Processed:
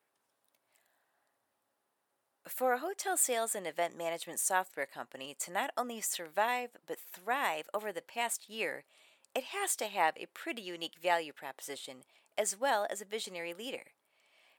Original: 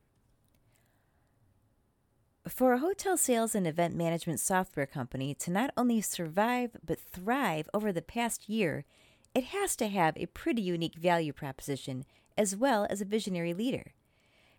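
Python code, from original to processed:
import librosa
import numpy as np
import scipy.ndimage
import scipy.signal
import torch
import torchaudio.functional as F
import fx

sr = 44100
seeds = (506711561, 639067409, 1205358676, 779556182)

y = scipy.signal.sosfilt(scipy.signal.butter(2, 630.0, 'highpass', fs=sr, output='sos'), x)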